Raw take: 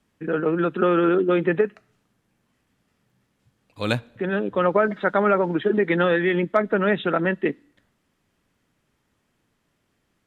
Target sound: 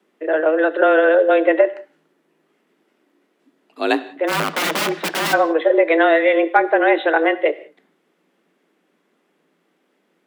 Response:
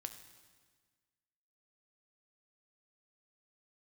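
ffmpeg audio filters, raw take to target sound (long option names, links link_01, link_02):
-filter_complex "[0:a]asplit=3[link_01][link_02][link_03];[link_01]afade=type=out:start_time=4.27:duration=0.02[link_04];[link_02]aeval=exprs='(mod(8.91*val(0)+1,2)-1)/8.91':channel_layout=same,afade=type=in:start_time=4.27:duration=0.02,afade=type=out:start_time=5.32:duration=0.02[link_05];[link_03]afade=type=in:start_time=5.32:duration=0.02[link_06];[link_04][link_05][link_06]amix=inputs=3:normalize=0,afreqshift=160,asplit=2[link_07][link_08];[1:a]atrim=start_sample=2205,afade=type=out:start_time=0.25:duration=0.01,atrim=end_sample=11466,lowpass=4000[link_09];[link_08][link_09]afir=irnorm=-1:irlink=0,volume=3.5dB[link_10];[link_07][link_10]amix=inputs=2:normalize=0"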